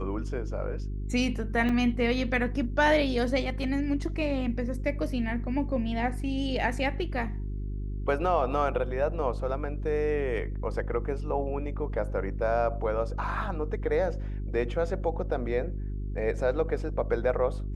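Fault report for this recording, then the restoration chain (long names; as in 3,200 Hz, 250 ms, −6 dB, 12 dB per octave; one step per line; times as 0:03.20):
mains hum 50 Hz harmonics 8 −33 dBFS
0:01.69: drop-out 3.4 ms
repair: hum removal 50 Hz, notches 8
repair the gap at 0:01.69, 3.4 ms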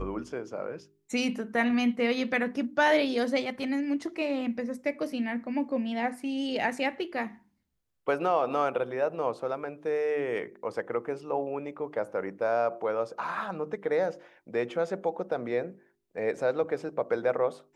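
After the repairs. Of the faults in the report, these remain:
none of them is left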